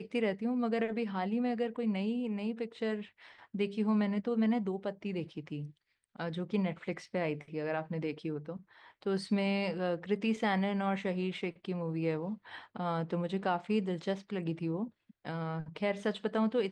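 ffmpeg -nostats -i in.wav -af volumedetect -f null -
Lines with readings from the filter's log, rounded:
mean_volume: -34.1 dB
max_volume: -17.0 dB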